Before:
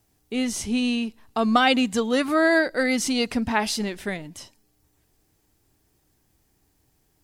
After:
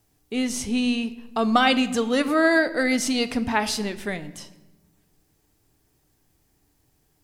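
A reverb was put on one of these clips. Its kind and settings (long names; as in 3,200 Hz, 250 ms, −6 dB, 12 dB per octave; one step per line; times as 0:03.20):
rectangular room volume 620 cubic metres, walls mixed, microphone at 0.35 metres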